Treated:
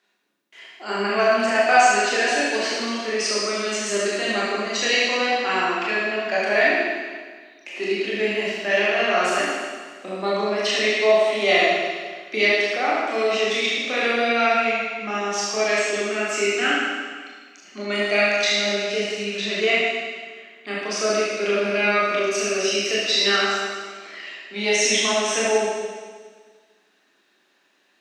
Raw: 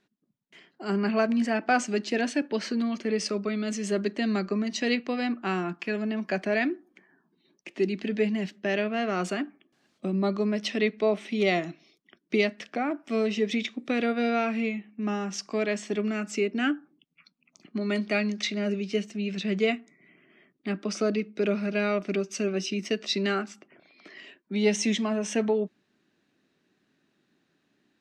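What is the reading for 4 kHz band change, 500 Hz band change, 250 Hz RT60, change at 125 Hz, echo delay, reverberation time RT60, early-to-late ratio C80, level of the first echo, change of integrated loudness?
+12.5 dB, +7.0 dB, 1.6 s, no reading, no echo, 1.6 s, 0.0 dB, no echo, +7.5 dB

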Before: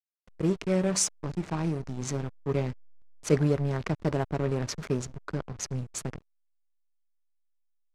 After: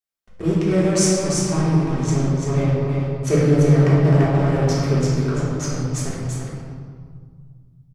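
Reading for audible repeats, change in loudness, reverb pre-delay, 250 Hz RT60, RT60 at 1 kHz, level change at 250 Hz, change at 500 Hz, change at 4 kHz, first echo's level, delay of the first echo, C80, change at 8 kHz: 1, +11.0 dB, 3 ms, 2.7 s, 1.8 s, +11.5 dB, +10.0 dB, +8.0 dB, -4.0 dB, 340 ms, -1.0 dB, +7.0 dB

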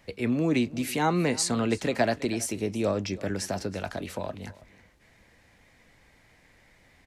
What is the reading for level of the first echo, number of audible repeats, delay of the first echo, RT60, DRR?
-20.0 dB, 1, 324 ms, no reverb, no reverb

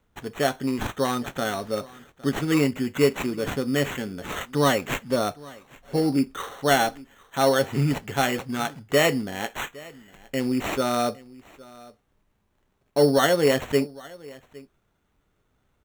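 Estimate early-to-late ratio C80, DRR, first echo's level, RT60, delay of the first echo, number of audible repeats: no reverb, no reverb, -22.0 dB, no reverb, 811 ms, 1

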